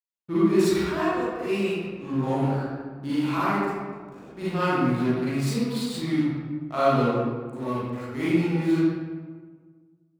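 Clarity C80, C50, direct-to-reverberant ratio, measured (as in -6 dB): -1.5 dB, -6.0 dB, -12.0 dB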